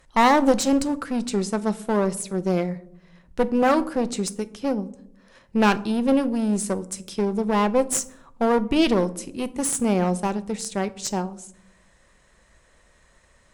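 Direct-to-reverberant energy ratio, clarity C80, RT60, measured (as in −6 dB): 11.5 dB, 22.5 dB, 0.75 s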